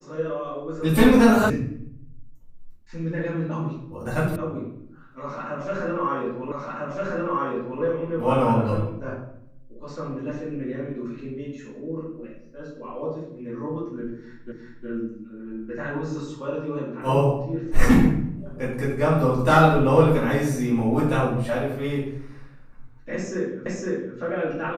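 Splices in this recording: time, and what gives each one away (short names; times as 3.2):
1.5 sound cut off
4.36 sound cut off
6.52 repeat of the last 1.3 s
14.52 repeat of the last 0.36 s
23.66 repeat of the last 0.51 s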